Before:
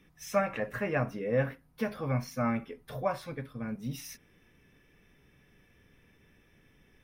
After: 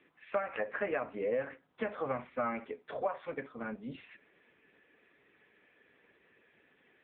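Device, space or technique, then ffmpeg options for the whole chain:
voicemail: -af "highpass=390,lowpass=2.8k,acompressor=threshold=-34dB:ratio=10,volume=5.5dB" -ar 8000 -c:a libopencore_amrnb -b:a 6700

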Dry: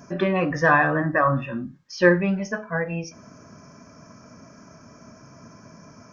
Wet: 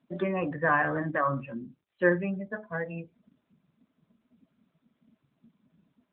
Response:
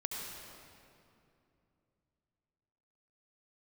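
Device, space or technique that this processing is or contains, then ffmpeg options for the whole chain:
mobile call with aggressive noise cancelling: -filter_complex "[0:a]asplit=3[a][b][c];[a]afade=t=out:st=1.79:d=0.02[d];[b]highpass=f=76:p=1,afade=t=in:st=1.79:d=0.02,afade=t=out:st=2.69:d=0.02[e];[c]afade=t=in:st=2.69:d=0.02[f];[d][e][f]amix=inputs=3:normalize=0,highpass=130,afftdn=nr=24:nf=-32,volume=-6.5dB" -ar 8000 -c:a libopencore_amrnb -b:a 10200

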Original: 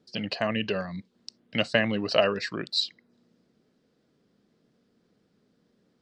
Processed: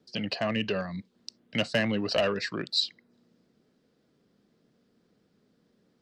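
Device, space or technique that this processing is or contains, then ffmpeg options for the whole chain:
one-band saturation: -filter_complex "[0:a]acrossover=split=240|3100[a][b][c];[b]asoftclip=type=tanh:threshold=-21dB[d];[a][d][c]amix=inputs=3:normalize=0"

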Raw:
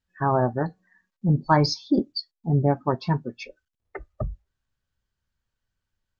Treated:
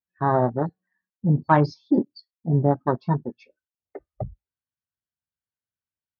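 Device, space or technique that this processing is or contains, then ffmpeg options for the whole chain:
over-cleaned archive recording: -af "highpass=100,lowpass=5.7k,afwtdn=0.0355,volume=1.5dB"

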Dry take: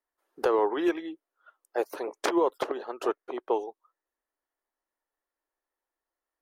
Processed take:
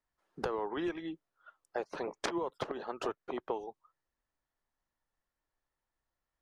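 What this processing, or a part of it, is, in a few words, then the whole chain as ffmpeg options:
jukebox: -filter_complex "[0:a]lowpass=7k,lowshelf=f=230:t=q:w=1.5:g=13,acompressor=threshold=-32dB:ratio=6,asettb=1/sr,asplit=3[a][b][c];[a]atrim=end=1.794[d];[b]atrim=start=1.79:end=2.21,asetpts=PTS-STARTPTS,afade=t=in:d=0.004:c=qsin,afade=t=out:st=0.416:d=0.004:c=qsin,lowpass=6.8k[e];[c]atrim=start=2.206[f];[d][e]acrossfade=d=0.004:c1=hsin:c2=qsin[g];[g][f]acrossfade=d=0.004:c1=qsin:c2=hsin"

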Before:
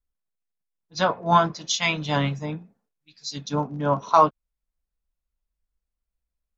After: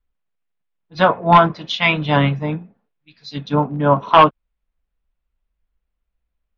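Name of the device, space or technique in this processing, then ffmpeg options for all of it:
synthesiser wavefolder: -af "aeval=exprs='0.335*(abs(mod(val(0)/0.335+3,4)-2)-1)':c=same,lowpass=f=3.3k:w=0.5412,lowpass=f=3.3k:w=1.3066,volume=8dB"

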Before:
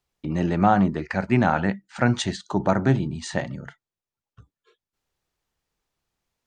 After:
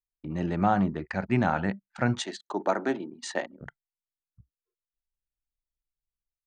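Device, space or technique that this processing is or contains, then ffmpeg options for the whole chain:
voice memo with heavy noise removal: -filter_complex "[0:a]asettb=1/sr,asplit=3[a][b][c];[a]atrim=end=2.224[d];[b]atrim=start=2.22:end=3.61,asetpts=PTS-STARTPTS,afade=t=in:d=0.004:c=qsin,afade=t=out:st=1.386:d=0.004:c=qsin,highpass=f=280:w=0.5412,highpass=f=280:w=1.3066[e];[c]atrim=start=3.606[f];[d][e]acrossfade=d=0.004:c1=hsin:c2=qsin[g];[g][f]acrossfade=d=0.004:c1=qsin:c2=hsin,anlmdn=1.58,dynaudnorm=f=140:g=5:m=7dB,volume=-8.5dB"

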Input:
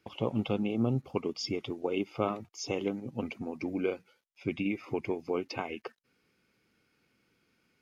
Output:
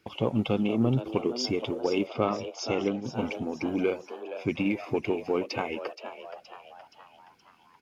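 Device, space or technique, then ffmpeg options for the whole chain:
parallel distortion: -filter_complex "[0:a]asplit=2[a][b];[b]asoftclip=type=hard:threshold=-29.5dB,volume=-12dB[c];[a][c]amix=inputs=2:normalize=0,asettb=1/sr,asplit=3[d][e][f];[d]atrim=end=2.074[g];[e]atrim=start=2.07:end=3.04,asetpts=PTS-STARTPTS,afade=t=in:d=0.004:c=qsin,afade=t=out:st=0.966:d=0.004:c=qsin,lowpass=f=5.8k:w=0.5412,lowpass=f=5.8k:w=1.3066[h];[f]atrim=start=3.036[i];[g][h]acrossfade=d=0.004:c1=hsin:c2=qsin[j];[j][i]acrossfade=d=0.004:c1=qsin:c2=hsin,asplit=6[k][l][m][n][o][p];[l]adelay=472,afreqshift=120,volume=-11.5dB[q];[m]adelay=944,afreqshift=240,volume=-17.3dB[r];[n]adelay=1416,afreqshift=360,volume=-23.2dB[s];[o]adelay=1888,afreqshift=480,volume=-29dB[t];[p]adelay=2360,afreqshift=600,volume=-34.9dB[u];[k][q][r][s][t][u]amix=inputs=6:normalize=0,volume=3dB"

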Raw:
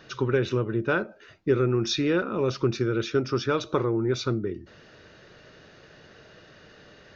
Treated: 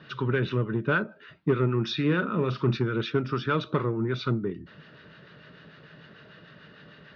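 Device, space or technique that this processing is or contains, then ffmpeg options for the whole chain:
guitar amplifier with harmonic tremolo: -filter_complex "[0:a]acrossover=split=830[a][b];[a]aeval=exprs='val(0)*(1-0.5/2+0.5/2*cos(2*PI*6.7*n/s))':c=same[c];[b]aeval=exprs='val(0)*(1-0.5/2-0.5/2*cos(2*PI*6.7*n/s))':c=same[d];[c][d]amix=inputs=2:normalize=0,asoftclip=type=tanh:threshold=-17dB,highpass=91,equalizer=f=95:t=q:w=4:g=-6,equalizer=f=160:t=q:w=4:g=7,equalizer=f=350:t=q:w=4:g=-6,equalizer=f=510:t=q:w=4:g=-6,equalizer=f=750:t=q:w=4:g=-8,equalizer=f=2.3k:t=q:w=4:g=-4,lowpass=f=3.7k:w=0.5412,lowpass=f=3.7k:w=1.3066,asettb=1/sr,asplit=3[e][f][g];[e]atrim=end=2.074[h];[f]atrim=start=2.07:end=2.77,asetpts=PTS-STARTPTS,afade=t=in:d=0.004:c=qsin,afade=t=out:st=0.696:d=0.004:c=qsin,asplit=2[i][j];[j]adelay=40,volume=-11.5dB[k];[i][k]amix=inputs=2:normalize=0,atrim=end_sample=30870[l];[g]atrim=start=2.766[m];[h][l]acrossfade=d=0.004:c1=hsin:c2=qsin[n];[n][m]acrossfade=d=0.004:c1=qsin:c2=hsin,volume=5dB"

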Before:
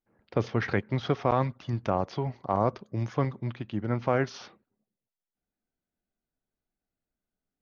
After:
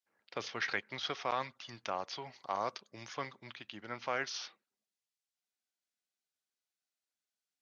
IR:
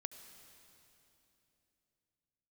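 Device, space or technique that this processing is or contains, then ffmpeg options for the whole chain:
piezo pickup straight into a mixer: -filter_complex "[0:a]asettb=1/sr,asplit=3[a][b][c];[a]atrim=end=2.334[d];[b]atrim=start=2.33:end=2.81,asetpts=PTS-STARTPTS,afade=t=in:d=0.004:c=qsin,afade=t=out:st=0.476:d=0.004:c=qsin,highshelf=f=3.8k:g=6[e];[c]atrim=start=2.806[f];[d][e]acrossfade=d=0.004:c1=hsin:c2=qsin[g];[g][f]acrossfade=d=0.004:c1=qsin:c2=hsin,lowpass=5.5k,aderivative,volume=10dB"

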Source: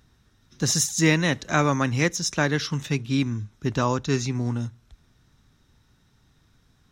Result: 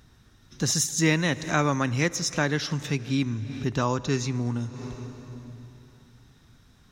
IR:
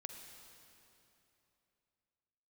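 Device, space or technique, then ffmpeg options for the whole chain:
ducked reverb: -filter_complex "[0:a]asplit=3[a][b][c];[1:a]atrim=start_sample=2205[d];[b][d]afir=irnorm=-1:irlink=0[e];[c]apad=whole_len=305070[f];[e][f]sidechaincompress=threshold=-42dB:ratio=6:attack=43:release=145,volume=8dB[g];[a][g]amix=inputs=2:normalize=0,volume=-3.5dB"

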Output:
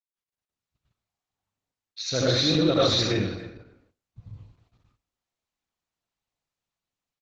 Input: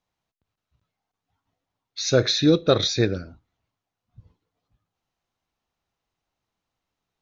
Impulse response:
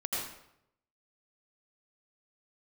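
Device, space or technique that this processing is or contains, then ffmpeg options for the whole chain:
speakerphone in a meeting room: -filter_complex "[0:a]equalizer=f=400:t=o:w=0.33:g=-7,equalizer=f=2.5k:t=o:w=0.33:g=4,equalizer=f=4k:t=o:w=0.33:g=4[a];[1:a]atrim=start_sample=2205[b];[a][b]afir=irnorm=-1:irlink=0,asplit=2[c][d];[d]adelay=280,highpass=300,lowpass=3.4k,asoftclip=type=hard:threshold=-11dB,volume=-16dB[e];[c][e]amix=inputs=2:normalize=0,dynaudnorm=f=260:g=5:m=12dB,agate=range=-18dB:threshold=-55dB:ratio=16:detection=peak,volume=-8dB" -ar 48000 -c:a libopus -b:a 12k

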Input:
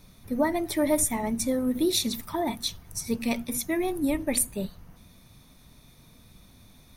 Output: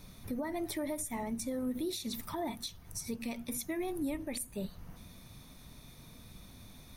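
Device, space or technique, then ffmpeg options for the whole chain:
stacked limiters: -af "alimiter=limit=-16.5dB:level=0:latency=1:release=197,alimiter=limit=-22dB:level=0:latency=1:release=427,alimiter=level_in=5dB:limit=-24dB:level=0:latency=1:release=307,volume=-5dB,volume=1dB"

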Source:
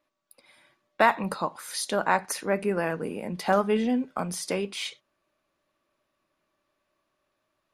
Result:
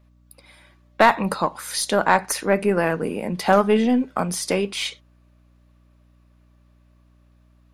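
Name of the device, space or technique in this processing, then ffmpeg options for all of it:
valve amplifier with mains hum: -af "aeval=exprs='(tanh(3.55*val(0)+0.3)-tanh(0.3))/3.55':c=same,aeval=exprs='val(0)+0.000794*(sin(2*PI*60*n/s)+sin(2*PI*2*60*n/s)/2+sin(2*PI*3*60*n/s)/3+sin(2*PI*4*60*n/s)/4+sin(2*PI*5*60*n/s)/5)':c=same,volume=7.5dB"

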